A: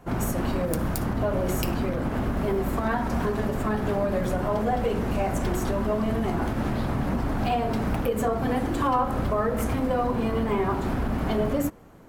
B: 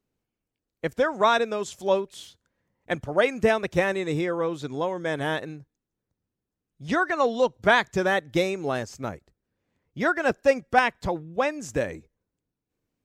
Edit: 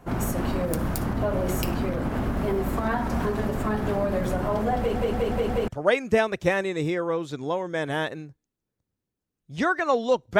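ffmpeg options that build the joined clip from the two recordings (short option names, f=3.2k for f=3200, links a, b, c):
-filter_complex "[0:a]apad=whole_dur=10.39,atrim=end=10.39,asplit=5[a][b][c][d][e];[a]atrim=end=4.962[f];[b]atrim=start=4.778:end=4.962[g];[c]atrim=start=4.778:end=4.962[h];[d]atrim=start=4.778:end=4.962[i];[e]atrim=start=4.778:end=4.962[j];[1:a]atrim=start=2.988:end=7.7[k];[f][g]acrossfade=d=0.004:c1=hsin:c2=hsin[l];[l][h]acrossfade=d=0.004:c1=hsin:c2=hsin[m];[m][i]acrossfade=d=0.004:c1=hsin:c2=hsin[n];[n][j]acrossfade=d=0.004:c1=hsin:c2=hsin[o];[o][k]acrossfade=d=0.004:c1=hsin:c2=hsin"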